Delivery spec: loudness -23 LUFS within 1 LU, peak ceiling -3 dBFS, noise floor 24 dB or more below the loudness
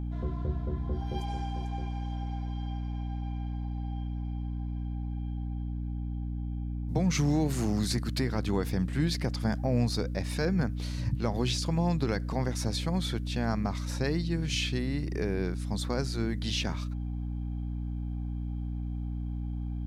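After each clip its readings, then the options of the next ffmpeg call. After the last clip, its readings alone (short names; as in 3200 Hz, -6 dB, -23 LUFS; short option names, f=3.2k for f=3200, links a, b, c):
hum 60 Hz; harmonics up to 300 Hz; hum level -31 dBFS; loudness -32.0 LUFS; peak -16.5 dBFS; loudness target -23.0 LUFS
-> -af "bandreject=f=60:t=h:w=6,bandreject=f=120:t=h:w=6,bandreject=f=180:t=h:w=6,bandreject=f=240:t=h:w=6,bandreject=f=300:t=h:w=6"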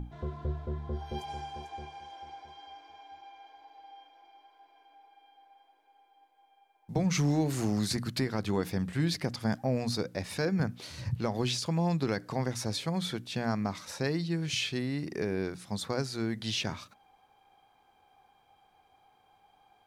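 hum none; loudness -32.5 LUFS; peak -18.0 dBFS; loudness target -23.0 LUFS
-> -af "volume=9.5dB"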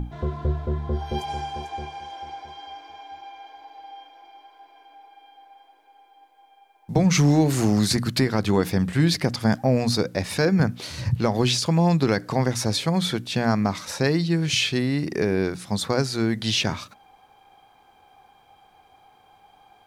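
loudness -23.0 LUFS; peak -8.5 dBFS; noise floor -57 dBFS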